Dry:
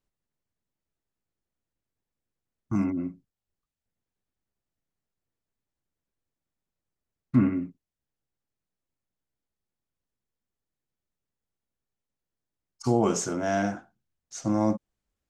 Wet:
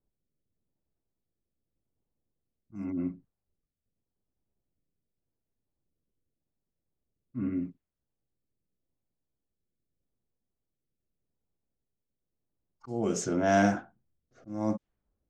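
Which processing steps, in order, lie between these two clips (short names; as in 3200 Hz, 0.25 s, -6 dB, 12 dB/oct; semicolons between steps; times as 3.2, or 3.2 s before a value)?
rotary speaker horn 0.85 Hz; low-pass opened by the level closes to 660 Hz, open at -24 dBFS; auto swell 0.528 s; gain +5.5 dB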